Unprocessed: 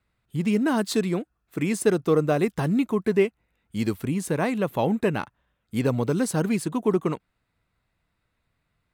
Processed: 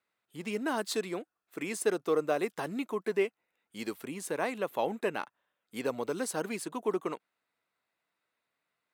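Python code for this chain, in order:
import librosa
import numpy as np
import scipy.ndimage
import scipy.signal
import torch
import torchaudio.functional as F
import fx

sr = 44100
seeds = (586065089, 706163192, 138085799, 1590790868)

y = scipy.signal.sosfilt(scipy.signal.butter(2, 390.0, 'highpass', fs=sr, output='sos'), x)
y = y * librosa.db_to_amplitude(-5.0)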